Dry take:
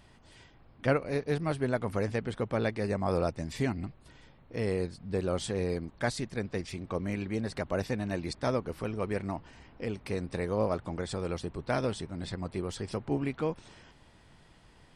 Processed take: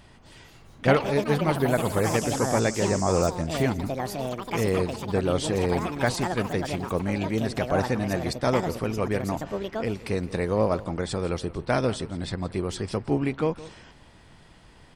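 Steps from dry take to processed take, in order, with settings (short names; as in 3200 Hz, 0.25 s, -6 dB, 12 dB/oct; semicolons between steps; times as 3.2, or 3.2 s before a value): 2.04–3.29 band noise 4900–8200 Hz -44 dBFS; echo 0.168 s -18 dB; echoes that change speed 0.263 s, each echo +6 st, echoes 2, each echo -6 dB; gain +6 dB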